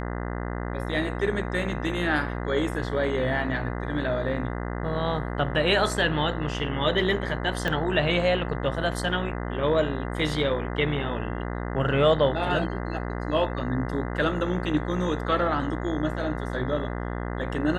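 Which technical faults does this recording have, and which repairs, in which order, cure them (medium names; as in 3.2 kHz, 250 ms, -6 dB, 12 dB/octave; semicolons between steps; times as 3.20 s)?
buzz 60 Hz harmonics 34 -31 dBFS
7.68 s: pop -14 dBFS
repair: de-click; de-hum 60 Hz, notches 34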